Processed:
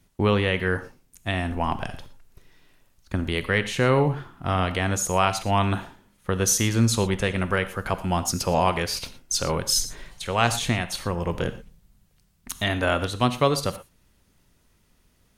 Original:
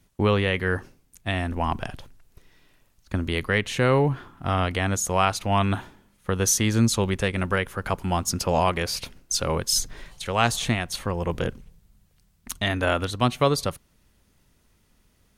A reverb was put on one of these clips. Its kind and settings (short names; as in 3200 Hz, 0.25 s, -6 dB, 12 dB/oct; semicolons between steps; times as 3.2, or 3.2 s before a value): non-linear reverb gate 0.14 s flat, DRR 11 dB